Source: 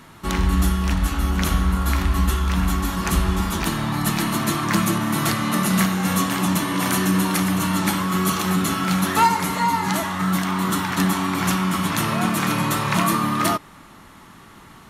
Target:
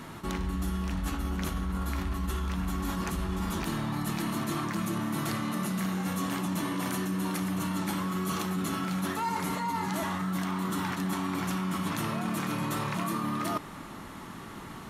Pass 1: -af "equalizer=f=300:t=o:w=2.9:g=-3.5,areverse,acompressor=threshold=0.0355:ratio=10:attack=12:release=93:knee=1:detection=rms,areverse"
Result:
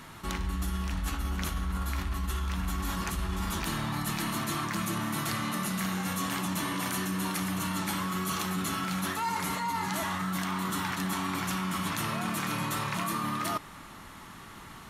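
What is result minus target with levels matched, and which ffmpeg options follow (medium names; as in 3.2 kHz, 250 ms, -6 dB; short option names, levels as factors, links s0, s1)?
250 Hz band -3.0 dB
-af "equalizer=f=300:t=o:w=2.9:g=4.5,areverse,acompressor=threshold=0.0355:ratio=10:attack=12:release=93:knee=1:detection=rms,areverse"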